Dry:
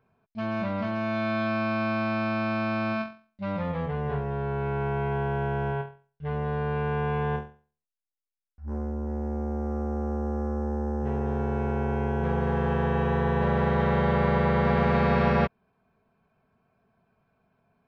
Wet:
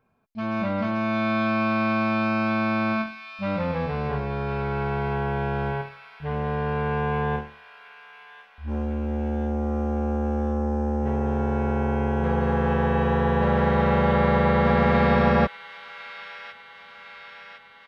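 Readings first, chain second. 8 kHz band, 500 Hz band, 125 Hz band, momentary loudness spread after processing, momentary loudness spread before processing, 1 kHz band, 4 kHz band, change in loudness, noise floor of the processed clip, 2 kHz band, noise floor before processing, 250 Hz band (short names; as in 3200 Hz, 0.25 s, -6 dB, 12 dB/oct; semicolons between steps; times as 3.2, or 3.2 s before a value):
n/a, +3.0 dB, +2.0 dB, 19 LU, 10 LU, +4.0 dB, +4.5 dB, +3.5 dB, -49 dBFS, +4.0 dB, under -85 dBFS, +4.0 dB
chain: comb 3.7 ms, depth 30%; AGC gain up to 3.5 dB; thin delay 1.056 s, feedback 62%, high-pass 2200 Hz, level -7 dB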